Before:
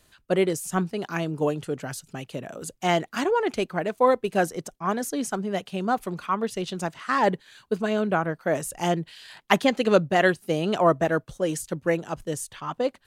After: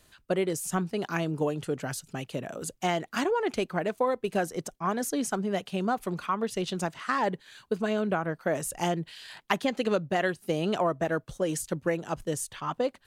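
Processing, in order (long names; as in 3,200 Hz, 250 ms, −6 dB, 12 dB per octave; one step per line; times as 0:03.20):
downward compressor 4 to 1, threshold −24 dBFS, peak gain reduction 10 dB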